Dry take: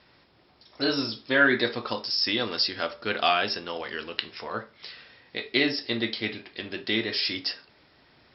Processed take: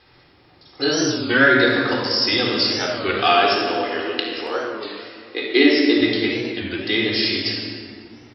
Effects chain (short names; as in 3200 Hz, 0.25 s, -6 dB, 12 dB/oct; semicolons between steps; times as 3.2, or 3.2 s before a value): 3.29–6.01 resonant low shelf 210 Hz -10.5 dB, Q 3; speakerphone echo 0.28 s, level -22 dB; shoebox room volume 3800 m³, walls mixed, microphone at 3.9 m; record warp 33 1/3 rpm, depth 160 cents; gain +2 dB